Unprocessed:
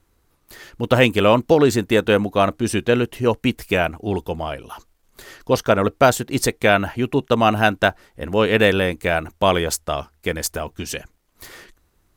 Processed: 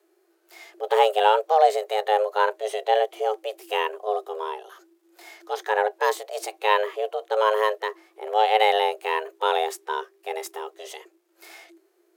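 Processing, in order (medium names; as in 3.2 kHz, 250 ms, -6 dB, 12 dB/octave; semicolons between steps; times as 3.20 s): harmonic-percussive split percussive -14 dB; frequency shift +320 Hz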